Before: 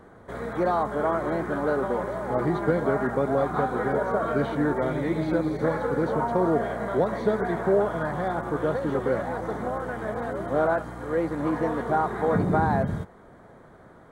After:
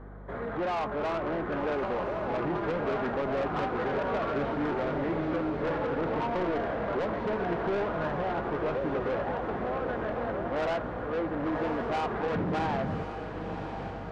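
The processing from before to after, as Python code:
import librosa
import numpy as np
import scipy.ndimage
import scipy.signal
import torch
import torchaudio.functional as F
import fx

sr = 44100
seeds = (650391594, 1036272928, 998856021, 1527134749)

y = scipy.signal.sosfilt(scipy.signal.butter(2, 2300.0, 'lowpass', fs=sr, output='sos'), x)
y = fx.low_shelf(y, sr, hz=79.0, db=-10.5)
y = fx.add_hum(y, sr, base_hz=50, snr_db=19)
y = 10.0 ** (-27.0 / 20.0) * np.tanh(y / 10.0 ** (-27.0 / 20.0))
y = fx.echo_diffused(y, sr, ms=1098, feedback_pct=57, wet_db=-8)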